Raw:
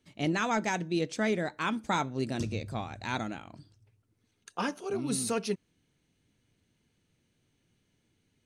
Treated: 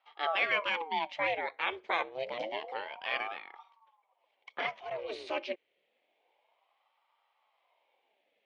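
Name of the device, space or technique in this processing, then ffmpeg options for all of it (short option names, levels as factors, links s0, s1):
voice changer toy: -af "aeval=exprs='val(0)*sin(2*PI*600*n/s+600*0.75/0.28*sin(2*PI*0.28*n/s))':c=same,highpass=500,equalizer=f=540:t=q:w=4:g=4,equalizer=f=840:t=q:w=4:g=3,equalizer=f=1400:t=q:w=4:g=-5,equalizer=f=2200:t=q:w=4:g=10,equalizer=f=3100:t=q:w=4:g=6,lowpass=f=3700:w=0.5412,lowpass=f=3700:w=1.3066"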